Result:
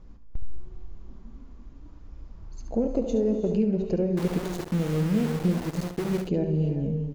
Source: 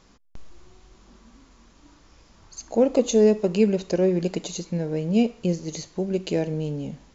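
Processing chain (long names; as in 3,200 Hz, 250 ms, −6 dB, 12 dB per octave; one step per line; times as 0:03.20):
spectral tilt −4 dB per octave
downward compressor 3 to 1, threshold −17 dBFS, peak gain reduction 8.5 dB
reverb whose tail is shaped and stops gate 420 ms rising, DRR 7 dB
flanger 0.47 Hz, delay 0.1 ms, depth 7.3 ms, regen −76%
0:04.17–0:06.22: centre clipping without the shift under −29 dBFS
single-tap delay 71 ms −9 dB
level −2 dB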